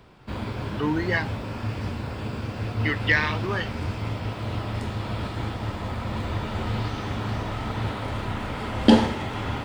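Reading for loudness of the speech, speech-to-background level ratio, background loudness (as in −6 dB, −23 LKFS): −26.0 LKFS, 2.5 dB, −28.5 LKFS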